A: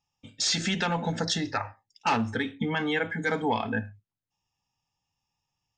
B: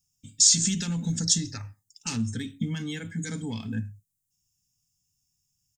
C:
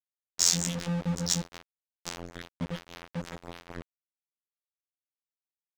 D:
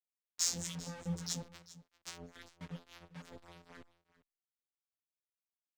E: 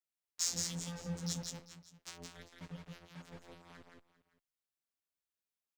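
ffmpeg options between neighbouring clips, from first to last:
-af "firequalizer=gain_entry='entry(160,0);entry(470,-19);entry(720,-27);entry(1300,-19);entry(7200,12)':delay=0.05:min_phase=1,volume=4dB"
-af "afftfilt=real='hypot(re,im)*cos(PI*b)':imag='0':win_size=2048:overlap=0.75,aeval=exprs='val(0)*gte(abs(val(0)),0.0299)':c=same,adynamicsmooth=sensitivity=6.5:basefreq=1.3k"
-filter_complex "[0:a]acrossover=split=930[a][b];[a]aeval=exprs='val(0)*(1-0.7/2+0.7/2*cos(2*PI*3.6*n/s))':c=same[c];[b]aeval=exprs='val(0)*(1-0.7/2-0.7/2*cos(2*PI*3.6*n/s))':c=same[d];[c][d]amix=inputs=2:normalize=0,aecho=1:1:395:0.126,asplit=2[e][f];[f]adelay=5.3,afreqshift=-2.1[g];[e][g]amix=inputs=2:normalize=1,volume=-4.5dB"
-af "aecho=1:1:169:0.668,volume=-2dB"

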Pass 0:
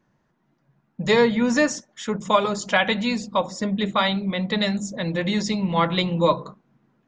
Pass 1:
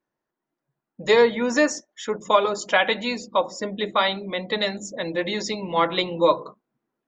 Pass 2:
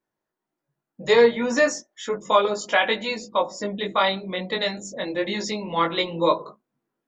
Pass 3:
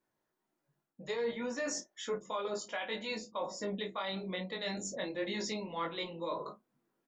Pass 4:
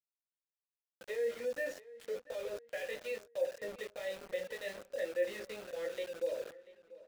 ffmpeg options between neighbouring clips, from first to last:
-af "afftdn=nr=14:nf=-43,lowshelf=f=250:t=q:w=1.5:g=-9"
-af "flanger=delay=18.5:depth=3.2:speed=0.33,volume=2.5dB"
-filter_complex "[0:a]areverse,acompressor=threshold=-31dB:ratio=6,areverse,alimiter=level_in=3dB:limit=-24dB:level=0:latency=1:release=387,volume=-3dB,asplit=2[a][b];[b]adelay=32,volume=-12dB[c];[a][c]amix=inputs=2:normalize=0"
-filter_complex "[0:a]asplit=3[a][b][c];[a]bandpass=f=530:t=q:w=8,volume=0dB[d];[b]bandpass=f=1.84k:t=q:w=8,volume=-6dB[e];[c]bandpass=f=2.48k:t=q:w=8,volume=-9dB[f];[d][e][f]amix=inputs=3:normalize=0,aeval=exprs='val(0)*gte(abs(val(0)),0.00237)':c=same,asplit=2[g][h];[h]adelay=688,lowpass=f=3.3k:p=1,volume=-18.5dB,asplit=2[i][j];[j]adelay=688,lowpass=f=3.3k:p=1,volume=0.41,asplit=2[k][l];[l]adelay=688,lowpass=f=3.3k:p=1,volume=0.41[m];[g][i][k][m]amix=inputs=4:normalize=0,volume=7dB"

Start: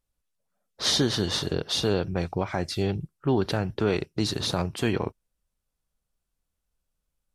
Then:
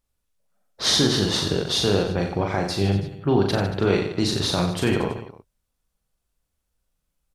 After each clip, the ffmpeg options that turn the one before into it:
-af "aecho=1:1:40|90|152.5|230.6|328.3:0.631|0.398|0.251|0.158|0.1,volume=2.5dB"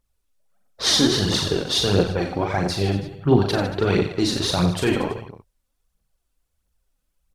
-af "aphaser=in_gain=1:out_gain=1:delay=4.1:decay=0.5:speed=1.5:type=triangular"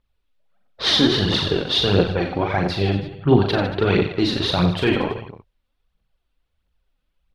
-af "highshelf=f=5k:t=q:w=1.5:g=-13,volume=1.5dB"

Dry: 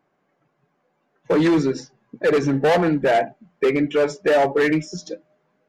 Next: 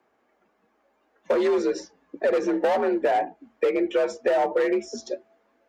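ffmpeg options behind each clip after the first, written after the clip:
-filter_complex "[0:a]equalizer=f=140:t=o:w=0.42:g=-10,acrossover=split=240|1200[a][b][c];[a]acompressor=threshold=-42dB:ratio=4[d];[b]acompressor=threshold=-22dB:ratio=4[e];[c]acompressor=threshold=-40dB:ratio=4[f];[d][e][f]amix=inputs=3:normalize=0,afreqshift=54,volume=1.5dB"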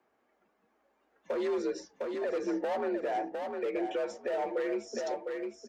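-af "aecho=1:1:705|1410|2115:0.376|0.0714|0.0136,alimiter=limit=-18.5dB:level=0:latency=1:release=294,volume=-5.5dB"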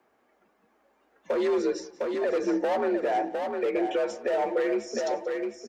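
-af "aecho=1:1:181|362|543:0.106|0.0339|0.0108,volume=6dB"

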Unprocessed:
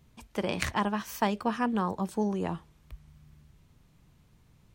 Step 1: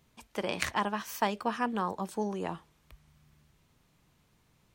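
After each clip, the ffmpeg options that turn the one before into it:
-af "lowshelf=f=220:g=-11"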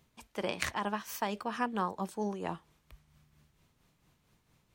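-af "tremolo=f=4.4:d=0.48"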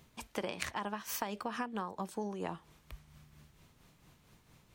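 -af "acompressor=threshold=-40dB:ratio=16,volume=6.5dB"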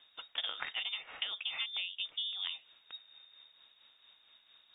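-af "lowpass=f=3.2k:t=q:w=0.5098,lowpass=f=3.2k:t=q:w=0.6013,lowpass=f=3.2k:t=q:w=0.9,lowpass=f=3.2k:t=q:w=2.563,afreqshift=-3800"

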